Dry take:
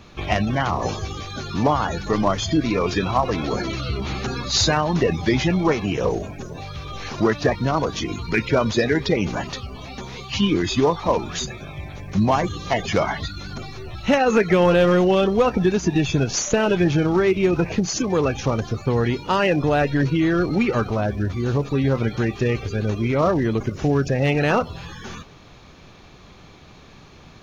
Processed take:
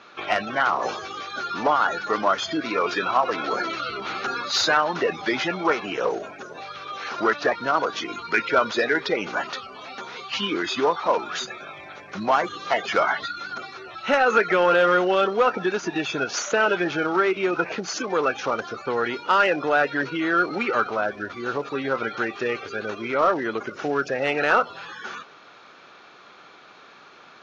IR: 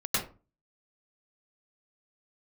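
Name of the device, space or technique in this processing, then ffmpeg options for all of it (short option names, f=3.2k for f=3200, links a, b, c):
intercom: -af "highpass=430,lowpass=4.9k,equalizer=f=1.4k:t=o:w=0.34:g=11,asoftclip=type=tanh:threshold=-7.5dB"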